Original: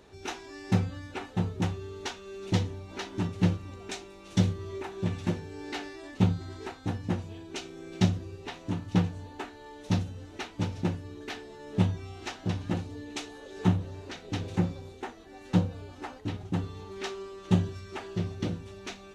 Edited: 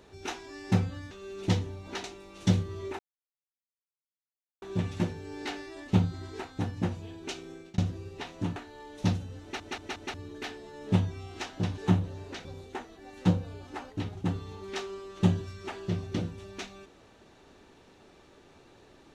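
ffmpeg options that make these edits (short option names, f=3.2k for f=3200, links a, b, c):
-filter_complex "[0:a]asplit=12[a][b][c][d][e][f][g][h][i][j][k][l];[a]atrim=end=1.112[m];[b]atrim=start=2.148:end=3.082[n];[c]atrim=start=3.938:end=4.89,asetpts=PTS-STARTPTS,afade=t=out:st=0.948:d=0.004:c=hsin,apad=pad_dur=1.63[o];[d]atrim=start=4.89:end=8.05,asetpts=PTS-STARTPTS,afade=t=in:d=0.004:c=hsin,afade=t=out:st=2.88:d=0.28[p];[e]atrim=start=8.05:end=8.832,asetpts=PTS-STARTPTS,afade=t=in:d=0.004:c=hsin[q];[f]atrim=start=9.418:end=10.462[r];[g]atrim=start=10.278:end=10.462[s];[h]atrim=start=10.278:end=10.462[t];[i]atrim=start=10.278:end=10.462[u];[j]atrim=start=10.998:end=12.642[v];[k]atrim=start=13.548:end=14.222[w];[l]atrim=start=14.728[x];[m][n]acrossfade=d=0.004:c1=hsin:c2=hsin[y];[o][p][q]concat=n=3:v=0:a=1[z];[y][z]acrossfade=d=0.004:c1=hsin:c2=hsin[aa];[aa][r]acrossfade=d=0.004:c1=hsin:c2=hsin[ab];[ab][s]acrossfade=d=0.004:c1=hsin:c2=hsin[ac];[ac][t]acrossfade=d=0.004:c1=hsin:c2=hsin[ad];[ad][u]acrossfade=d=0.004:c1=hsin:c2=hsin[ae];[ae][v]acrossfade=d=0.004:c1=hsin:c2=hsin[af];[af][w]acrossfade=d=0.004:c1=hsin:c2=hsin[ag];[ag][x]acrossfade=d=0.004:c1=hsin:c2=hsin"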